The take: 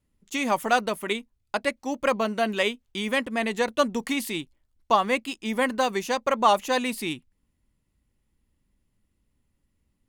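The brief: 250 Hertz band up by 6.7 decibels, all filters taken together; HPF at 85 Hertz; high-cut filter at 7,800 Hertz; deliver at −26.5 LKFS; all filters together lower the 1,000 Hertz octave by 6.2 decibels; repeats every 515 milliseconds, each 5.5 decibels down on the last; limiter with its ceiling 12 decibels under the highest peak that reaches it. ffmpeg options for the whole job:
ffmpeg -i in.wav -af "highpass=85,lowpass=7800,equalizer=frequency=250:width_type=o:gain=8,equalizer=frequency=1000:width_type=o:gain=-9,alimiter=limit=-22dB:level=0:latency=1,aecho=1:1:515|1030|1545|2060|2575|3090|3605:0.531|0.281|0.149|0.079|0.0419|0.0222|0.0118,volume=4dB" out.wav

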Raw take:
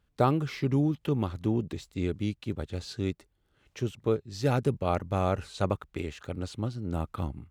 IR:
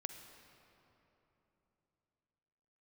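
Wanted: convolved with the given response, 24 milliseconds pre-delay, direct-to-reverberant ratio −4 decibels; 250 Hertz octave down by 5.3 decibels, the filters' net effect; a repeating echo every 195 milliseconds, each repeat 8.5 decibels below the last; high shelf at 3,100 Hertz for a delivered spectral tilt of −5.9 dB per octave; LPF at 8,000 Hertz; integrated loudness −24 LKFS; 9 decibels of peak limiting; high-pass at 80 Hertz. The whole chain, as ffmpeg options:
-filter_complex "[0:a]highpass=80,lowpass=8000,equalizer=frequency=250:width_type=o:gain=-7.5,highshelf=frequency=3100:gain=4,alimiter=limit=-19.5dB:level=0:latency=1,aecho=1:1:195|390|585|780:0.376|0.143|0.0543|0.0206,asplit=2[link_01][link_02];[1:a]atrim=start_sample=2205,adelay=24[link_03];[link_02][link_03]afir=irnorm=-1:irlink=0,volume=6.5dB[link_04];[link_01][link_04]amix=inputs=2:normalize=0,volume=5dB"

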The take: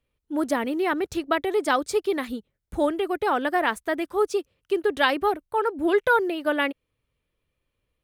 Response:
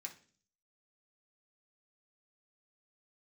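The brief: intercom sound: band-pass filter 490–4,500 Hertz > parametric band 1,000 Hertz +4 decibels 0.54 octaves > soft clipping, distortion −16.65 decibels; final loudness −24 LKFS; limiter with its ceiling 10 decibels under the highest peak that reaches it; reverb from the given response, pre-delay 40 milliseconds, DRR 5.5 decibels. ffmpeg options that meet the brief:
-filter_complex "[0:a]alimiter=limit=-16dB:level=0:latency=1,asplit=2[link_01][link_02];[1:a]atrim=start_sample=2205,adelay=40[link_03];[link_02][link_03]afir=irnorm=-1:irlink=0,volume=-1.5dB[link_04];[link_01][link_04]amix=inputs=2:normalize=0,highpass=490,lowpass=4500,equalizer=frequency=1000:width_type=o:width=0.54:gain=4,asoftclip=threshold=-18.5dB,volume=5.5dB"

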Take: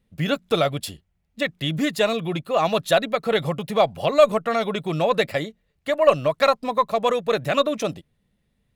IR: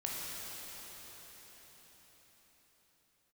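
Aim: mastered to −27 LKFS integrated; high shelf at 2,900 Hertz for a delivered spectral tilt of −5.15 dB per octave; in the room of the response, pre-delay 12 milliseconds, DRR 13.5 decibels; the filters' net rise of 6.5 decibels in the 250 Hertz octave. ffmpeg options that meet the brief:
-filter_complex "[0:a]equalizer=frequency=250:width_type=o:gain=8.5,highshelf=frequency=2900:gain=-5,asplit=2[link_01][link_02];[1:a]atrim=start_sample=2205,adelay=12[link_03];[link_02][link_03]afir=irnorm=-1:irlink=0,volume=-17dB[link_04];[link_01][link_04]amix=inputs=2:normalize=0,volume=-6.5dB"

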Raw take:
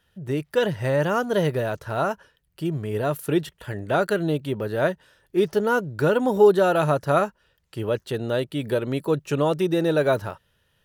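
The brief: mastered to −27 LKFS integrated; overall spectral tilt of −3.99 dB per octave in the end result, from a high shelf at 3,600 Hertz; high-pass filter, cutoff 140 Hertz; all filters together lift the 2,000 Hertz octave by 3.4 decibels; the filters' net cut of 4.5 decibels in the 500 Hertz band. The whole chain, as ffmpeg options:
ffmpeg -i in.wav -af "highpass=140,equalizer=frequency=500:width_type=o:gain=-6,equalizer=frequency=2000:width_type=o:gain=4.5,highshelf=frequency=3600:gain=5,volume=-1dB" out.wav

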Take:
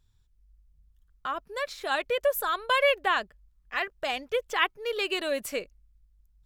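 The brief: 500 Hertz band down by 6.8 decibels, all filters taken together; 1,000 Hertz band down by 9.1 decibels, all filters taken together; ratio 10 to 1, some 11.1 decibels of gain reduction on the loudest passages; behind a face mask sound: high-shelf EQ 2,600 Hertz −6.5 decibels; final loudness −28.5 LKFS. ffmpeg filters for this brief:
ffmpeg -i in.wav -af "equalizer=frequency=500:width_type=o:gain=-5,equalizer=frequency=1000:width_type=o:gain=-9,acompressor=threshold=-33dB:ratio=10,highshelf=frequency=2600:gain=-6.5,volume=11.5dB" out.wav

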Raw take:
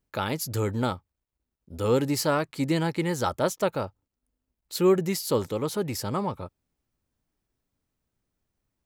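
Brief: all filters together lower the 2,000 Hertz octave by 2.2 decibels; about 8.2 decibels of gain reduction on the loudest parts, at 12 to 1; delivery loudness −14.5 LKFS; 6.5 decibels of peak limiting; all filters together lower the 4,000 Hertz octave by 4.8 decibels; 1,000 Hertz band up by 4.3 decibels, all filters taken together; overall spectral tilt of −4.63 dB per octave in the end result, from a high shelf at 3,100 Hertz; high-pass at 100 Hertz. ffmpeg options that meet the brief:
ffmpeg -i in.wav -af "highpass=100,equalizer=frequency=1000:width_type=o:gain=7,equalizer=frequency=2000:width_type=o:gain=-6,highshelf=frequency=3100:gain=4,equalizer=frequency=4000:width_type=o:gain=-8.5,acompressor=threshold=-24dB:ratio=12,volume=17.5dB,alimiter=limit=-3dB:level=0:latency=1" out.wav

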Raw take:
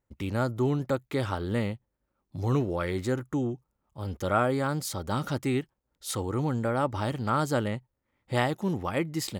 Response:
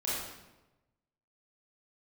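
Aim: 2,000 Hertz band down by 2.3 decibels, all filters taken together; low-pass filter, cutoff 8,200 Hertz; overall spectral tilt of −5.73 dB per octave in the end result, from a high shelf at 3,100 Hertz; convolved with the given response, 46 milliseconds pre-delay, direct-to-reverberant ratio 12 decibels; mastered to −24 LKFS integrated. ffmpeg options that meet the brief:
-filter_complex "[0:a]lowpass=8200,equalizer=frequency=2000:width_type=o:gain=-5,highshelf=frequency=3100:gain=6,asplit=2[link_01][link_02];[1:a]atrim=start_sample=2205,adelay=46[link_03];[link_02][link_03]afir=irnorm=-1:irlink=0,volume=-18dB[link_04];[link_01][link_04]amix=inputs=2:normalize=0,volume=5.5dB"

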